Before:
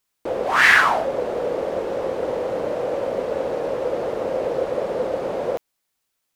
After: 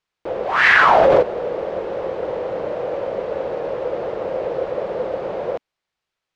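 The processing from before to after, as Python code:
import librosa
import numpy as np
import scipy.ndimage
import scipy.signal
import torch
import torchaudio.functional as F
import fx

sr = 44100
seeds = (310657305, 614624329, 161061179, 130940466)

y = scipy.signal.sosfilt(scipy.signal.butter(2, 3900.0, 'lowpass', fs=sr, output='sos'), x)
y = fx.peak_eq(y, sr, hz=260.0, db=-10.0, octaves=0.25)
y = fx.env_flatten(y, sr, amount_pct=100, at=(0.65, 1.21), fade=0.02)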